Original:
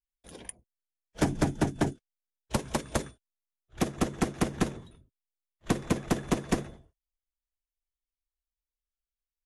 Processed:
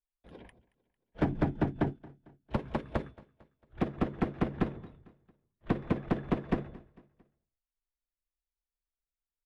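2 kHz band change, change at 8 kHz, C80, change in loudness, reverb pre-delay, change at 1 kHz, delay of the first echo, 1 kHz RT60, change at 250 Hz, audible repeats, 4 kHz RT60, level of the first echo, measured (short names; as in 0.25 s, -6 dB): -5.5 dB, under -30 dB, none, -2.5 dB, none, -3.5 dB, 0.225 s, none, -2.0 dB, 3, none, -22.0 dB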